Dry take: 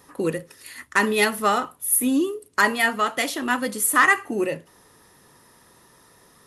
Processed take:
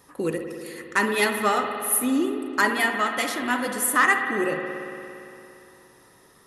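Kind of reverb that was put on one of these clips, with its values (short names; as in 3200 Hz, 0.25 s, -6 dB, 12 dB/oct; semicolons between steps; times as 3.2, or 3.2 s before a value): spring tank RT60 2.9 s, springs 57 ms, chirp 35 ms, DRR 5 dB; gain -2.5 dB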